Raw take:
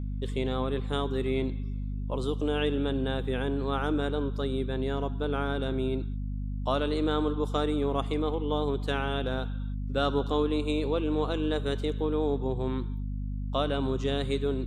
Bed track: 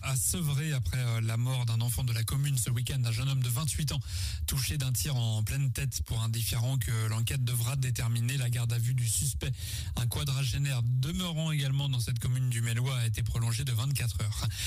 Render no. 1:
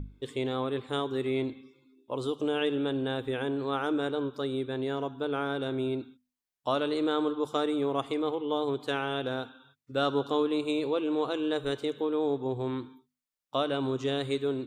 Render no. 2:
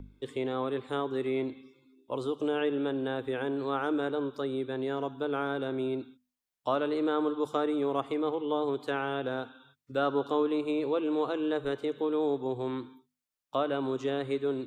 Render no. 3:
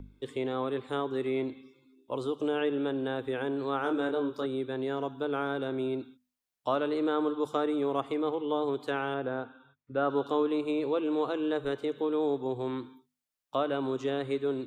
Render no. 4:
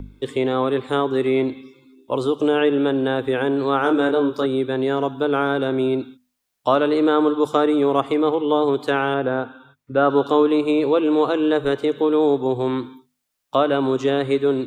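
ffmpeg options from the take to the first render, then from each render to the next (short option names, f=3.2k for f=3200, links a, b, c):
-af "bandreject=f=50:t=h:w=6,bandreject=f=100:t=h:w=6,bandreject=f=150:t=h:w=6,bandreject=f=200:t=h:w=6,bandreject=f=250:t=h:w=6"
-filter_complex "[0:a]acrossover=split=220|1200|2400[a][b][c][d];[a]alimiter=level_in=16dB:limit=-24dB:level=0:latency=1:release=445,volume=-16dB[e];[d]acompressor=threshold=-51dB:ratio=6[f];[e][b][c][f]amix=inputs=4:normalize=0"
-filter_complex "[0:a]asettb=1/sr,asplit=3[a][b][c];[a]atrim=end=3.824[d];[b]atrim=start=3.82:end=4.46,asetpts=PTS-STARTPTS,afade=t=in:d=0.004:c=qsin,afade=t=out:st=0.636:d=0.004:c=qsin,asplit=2[e][f];[f]adelay=25,volume=-5.5dB[g];[e][g]amix=inputs=2:normalize=0,atrim=end_sample=28224[h];[c]atrim=start=4.456[i];[d][h]acrossfade=d=0.004:c1=hsin:c2=qsin[j];[j][i]acrossfade=d=0.004:c1=qsin:c2=hsin,asettb=1/sr,asplit=3[k][l][m];[k]atrim=end=9.144[n];[l]atrim=start=9.14:end=10.1,asetpts=PTS-STARTPTS,afade=t=in:d=0.004:c=qsin,afade=t=out:st=0.956:d=0.004:c=qsin,lowpass=2.1k[o];[m]atrim=start=10.096[p];[n][o]acrossfade=d=0.004:c1=hsin:c2=qsin[q];[q][p]acrossfade=d=0.004:c1=qsin:c2=hsin"
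-af "volume=11.5dB"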